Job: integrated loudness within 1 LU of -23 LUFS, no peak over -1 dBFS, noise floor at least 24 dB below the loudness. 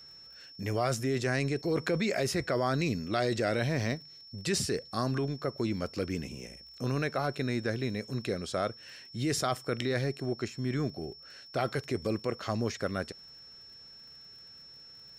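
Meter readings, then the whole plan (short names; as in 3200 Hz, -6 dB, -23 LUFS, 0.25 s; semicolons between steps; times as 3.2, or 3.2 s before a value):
ticks 42/s; steady tone 5400 Hz; tone level -49 dBFS; loudness -32.5 LUFS; peak -15.5 dBFS; loudness target -23.0 LUFS
-> de-click; notch 5400 Hz, Q 30; gain +9.5 dB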